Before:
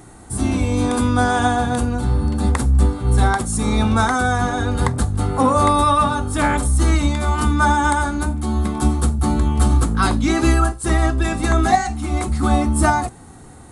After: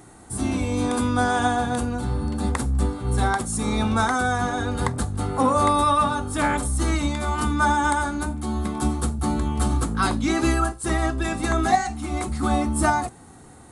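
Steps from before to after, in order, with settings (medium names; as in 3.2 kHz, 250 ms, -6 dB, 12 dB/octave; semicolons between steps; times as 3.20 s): bass shelf 96 Hz -7 dB; trim -3.5 dB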